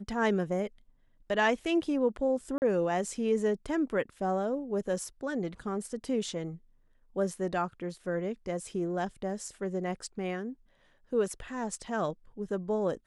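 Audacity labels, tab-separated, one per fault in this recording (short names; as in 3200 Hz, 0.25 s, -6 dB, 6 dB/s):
2.580000	2.620000	gap 39 ms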